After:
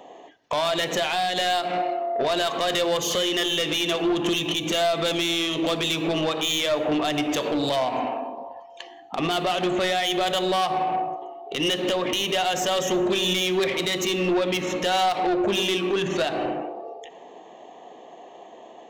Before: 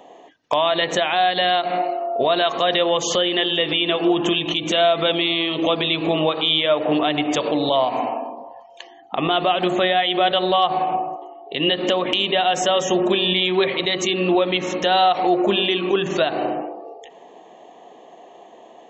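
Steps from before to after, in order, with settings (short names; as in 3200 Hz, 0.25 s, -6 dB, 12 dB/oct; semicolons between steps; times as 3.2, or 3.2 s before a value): self-modulated delay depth 0.072 ms; dynamic EQ 770 Hz, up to -3 dB, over -31 dBFS, Q 0.82; soft clip -17.5 dBFS, distortion -13 dB; two-slope reverb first 0.74 s, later 2.6 s, from -27 dB, DRR 14 dB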